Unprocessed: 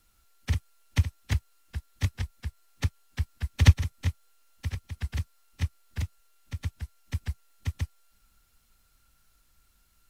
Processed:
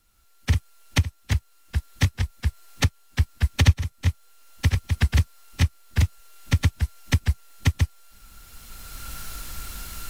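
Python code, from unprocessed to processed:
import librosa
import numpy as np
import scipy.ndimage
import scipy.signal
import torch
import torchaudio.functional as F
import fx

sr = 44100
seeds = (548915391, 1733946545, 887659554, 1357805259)

y = fx.recorder_agc(x, sr, target_db=-10.5, rise_db_per_s=16.0, max_gain_db=30)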